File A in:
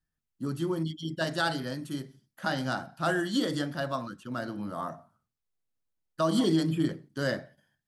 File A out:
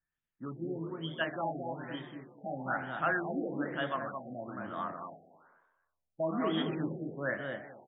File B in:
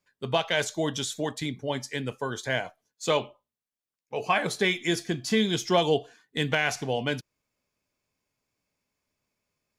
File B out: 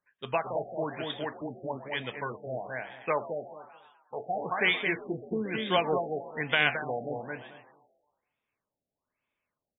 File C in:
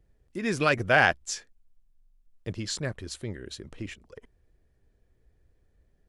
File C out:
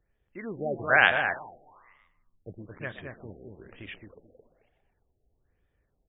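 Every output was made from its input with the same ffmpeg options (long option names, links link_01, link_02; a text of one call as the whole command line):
ffmpeg -i in.wav -filter_complex "[0:a]asplit=2[link_01][link_02];[link_02]adelay=219,lowpass=frequency=1200:poles=1,volume=-3.5dB,asplit=2[link_03][link_04];[link_04]adelay=219,lowpass=frequency=1200:poles=1,volume=0.21,asplit=2[link_05][link_06];[link_06]adelay=219,lowpass=frequency=1200:poles=1,volume=0.21[link_07];[link_03][link_05][link_07]amix=inputs=3:normalize=0[link_08];[link_01][link_08]amix=inputs=2:normalize=0,aeval=exprs='0.531*(cos(1*acos(clip(val(0)/0.531,-1,1)))-cos(1*PI/2))+0.0668*(cos(3*acos(clip(val(0)/0.531,-1,1)))-cos(3*PI/2))':channel_layout=same,tiltshelf=frequency=670:gain=-6.5,asplit=2[link_09][link_10];[link_10]asplit=6[link_11][link_12][link_13][link_14][link_15][link_16];[link_11]adelay=125,afreqshift=74,volume=-14.5dB[link_17];[link_12]adelay=250,afreqshift=148,volume=-19.1dB[link_18];[link_13]adelay=375,afreqshift=222,volume=-23.7dB[link_19];[link_14]adelay=500,afreqshift=296,volume=-28.2dB[link_20];[link_15]adelay=625,afreqshift=370,volume=-32.8dB[link_21];[link_16]adelay=750,afreqshift=444,volume=-37.4dB[link_22];[link_17][link_18][link_19][link_20][link_21][link_22]amix=inputs=6:normalize=0[link_23];[link_09][link_23]amix=inputs=2:normalize=0,afftfilt=real='re*lt(b*sr/1024,780*pow(3800/780,0.5+0.5*sin(2*PI*1.1*pts/sr)))':imag='im*lt(b*sr/1024,780*pow(3800/780,0.5+0.5*sin(2*PI*1.1*pts/sr)))':win_size=1024:overlap=0.75" out.wav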